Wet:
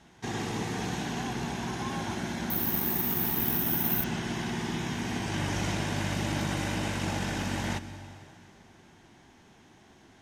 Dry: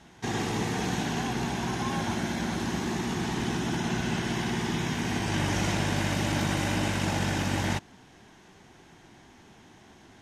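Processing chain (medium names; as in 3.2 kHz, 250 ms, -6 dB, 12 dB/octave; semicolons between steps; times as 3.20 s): on a send at -13 dB: reverberation RT60 3.0 s, pre-delay 108 ms; 2.50–4.04 s: on the sum: careless resampling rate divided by 3×, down filtered, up zero stuff; trim -3.5 dB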